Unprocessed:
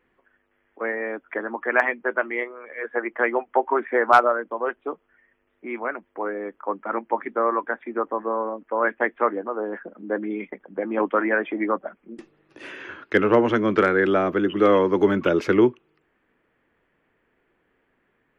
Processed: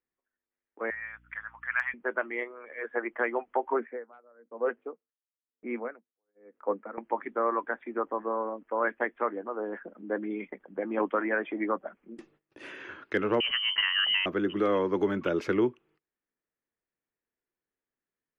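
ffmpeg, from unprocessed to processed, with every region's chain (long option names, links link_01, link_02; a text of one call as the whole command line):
ffmpeg -i in.wav -filter_complex "[0:a]asettb=1/sr,asplit=3[link_01][link_02][link_03];[link_01]atrim=end=0.904[link_04];[link_02]atrim=start=0.9:end=1.94,asetpts=PTS-STARTPTS,afade=type=in:duration=0.004:curve=qsin,afade=type=out:start_time=1.036:duration=0.004:curve=qsin,highpass=frequency=1300:width=0.5412,highpass=frequency=1300:width=1.3066,aeval=exprs='val(0)+0.00158*(sin(2*PI*60*n/s)+sin(2*PI*2*60*n/s)/2+sin(2*PI*3*60*n/s)/3+sin(2*PI*4*60*n/s)/4+sin(2*PI*5*60*n/s)/5)':channel_layout=same[link_05];[link_03]atrim=start=1.936[link_06];[link_04][link_05]acrossfade=duration=0.004:curve1=hsin:curve2=qsin[link_07];[link_07][link_06]acrossfade=duration=0.004:curve1=qsin:curve2=hsin,asettb=1/sr,asplit=3[link_08][link_09][link_10];[link_08]atrim=end=3.734[link_11];[link_09]atrim=start=3.73:end=6.98,asetpts=PTS-STARTPTS,afade=type=in:duration=0.004:curve=qsin,afade=type=out:start_time=3.246:duration=0.004:curve=qsin,highpass=120,equalizer=frequency=230:width_type=q:width=4:gain=8,equalizer=frequency=480:width_type=q:width=4:gain=9,equalizer=frequency=1000:width_type=q:width=4:gain=-3,lowpass=frequency=2700:width=0.5412,lowpass=frequency=2700:width=1.3066,aeval=exprs='val(0)*pow(10,-37*(0.5-0.5*cos(2*PI*1*n/s))/20)':channel_layout=same[link_12];[link_10]atrim=start=6.976[link_13];[link_11][link_12]acrossfade=duration=0.004:curve1=hsin:curve2=qsin[link_14];[link_14][link_13]acrossfade=duration=0.004:curve1=qsin:curve2=hsin,asettb=1/sr,asplit=3[link_15][link_16][link_17];[link_15]atrim=end=13.404[link_18];[link_16]atrim=start=13.4:end=14.26,asetpts=PTS-STARTPTS,afade=type=in:duration=0.004:curve=qsin,afade=type=out:start_time=0.856:duration=0.004:curve=qsin,highpass=140,lowpass=frequency=2800:width_type=q:width=0.5098,lowpass=frequency=2800:width_type=q:width=0.6013,lowpass=frequency=2800:width_type=q:width=0.9,lowpass=frequency=2800:width_type=q:width=2.563,afreqshift=-3300[link_19];[link_17]atrim=start=14.256[link_20];[link_18][link_19]acrossfade=duration=0.004:curve1=hsin:curve2=qsin[link_21];[link_21][link_20]acrossfade=duration=0.004:curve1=qsin:curve2=hsin,alimiter=limit=-10.5dB:level=0:latency=1:release=433,agate=range=-21dB:threshold=-56dB:ratio=16:detection=peak,volume=-5.5dB" out.wav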